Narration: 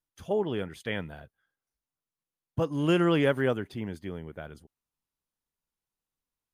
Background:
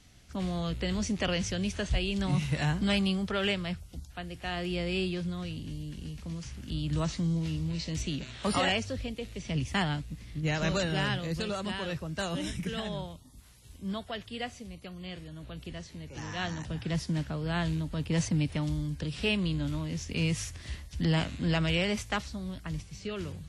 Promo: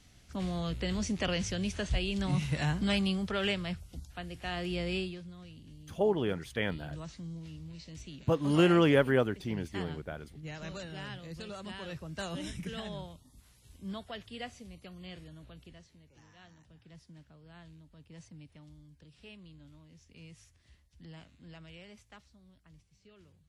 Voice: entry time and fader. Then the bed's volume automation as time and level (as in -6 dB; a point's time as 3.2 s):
5.70 s, 0.0 dB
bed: 4.95 s -2 dB
5.24 s -13 dB
10.99 s -13 dB
12.2 s -5 dB
15.27 s -5 dB
16.4 s -23 dB